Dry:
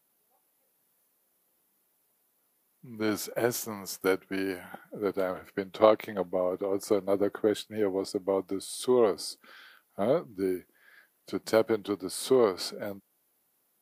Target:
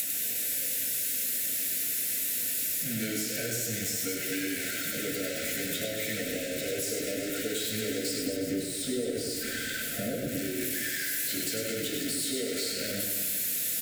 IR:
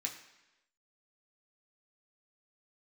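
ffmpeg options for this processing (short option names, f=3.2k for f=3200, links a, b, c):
-filter_complex "[0:a]aeval=exprs='val(0)+0.5*0.0562*sgn(val(0))':c=same,highshelf=f=2.3k:g=8[a];[1:a]atrim=start_sample=2205,afade=t=out:st=0.19:d=0.01,atrim=end_sample=8820[b];[a][b]afir=irnorm=-1:irlink=0,acrossover=split=140[c][d];[d]acompressor=threshold=-27dB:ratio=6[e];[c][e]amix=inputs=2:normalize=0,asettb=1/sr,asplit=3[f][g][h];[f]atrim=end=8.274[i];[g]atrim=start=8.27:end=10.28,asetpts=PTS-STARTPTS,afade=t=in:d=0.004:c=qsin,afade=t=out:st=2.006:d=0.004:c=qsin,tiltshelf=f=1.1k:g=6.5[j];[h]atrim=start=10.276[k];[i][j]acrossfade=d=0.004:c1=hsin:c2=qsin[l];[l][k]acrossfade=d=0.004:c1=qsin:c2=hsin,acompressor=threshold=-30dB:ratio=6,asuperstop=centerf=970:order=12:qfactor=1.3,aecho=1:1:100|220|364|536.8|744.2:0.631|0.398|0.251|0.158|0.1,aeval=exprs='val(0)*gte(abs(val(0)),0.00335)':c=same"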